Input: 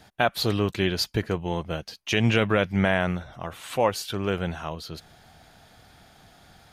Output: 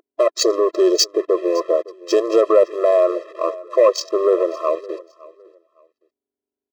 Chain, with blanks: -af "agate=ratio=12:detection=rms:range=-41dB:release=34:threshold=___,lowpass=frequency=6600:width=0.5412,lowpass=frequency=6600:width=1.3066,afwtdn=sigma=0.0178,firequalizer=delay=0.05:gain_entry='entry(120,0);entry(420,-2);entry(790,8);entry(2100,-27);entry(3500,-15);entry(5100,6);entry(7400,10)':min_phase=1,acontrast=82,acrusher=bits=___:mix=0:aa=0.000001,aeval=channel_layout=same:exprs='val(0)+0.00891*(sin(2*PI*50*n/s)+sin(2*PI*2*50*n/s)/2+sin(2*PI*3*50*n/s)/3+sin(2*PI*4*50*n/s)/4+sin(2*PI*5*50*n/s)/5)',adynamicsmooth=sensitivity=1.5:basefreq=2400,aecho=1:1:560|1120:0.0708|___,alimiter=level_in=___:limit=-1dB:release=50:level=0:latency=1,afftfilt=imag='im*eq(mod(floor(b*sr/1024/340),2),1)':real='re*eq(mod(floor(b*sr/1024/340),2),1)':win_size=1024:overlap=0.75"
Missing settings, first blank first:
-51dB, 6, 0.0177, 10.5dB